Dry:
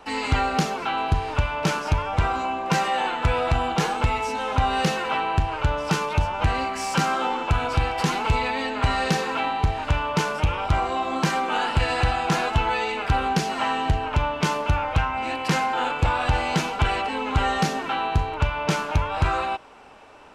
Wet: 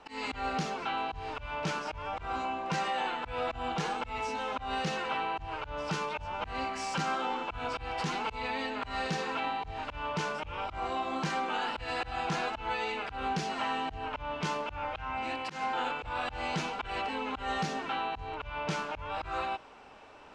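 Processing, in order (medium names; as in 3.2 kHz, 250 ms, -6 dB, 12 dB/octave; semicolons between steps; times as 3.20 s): treble shelf 4.5 kHz +8.5 dB; peak limiter -14.5 dBFS, peak gain reduction 6 dB; reverse; upward compressor, threshold -39 dBFS; reverse; slow attack 155 ms; distance through air 98 m; trim -7.5 dB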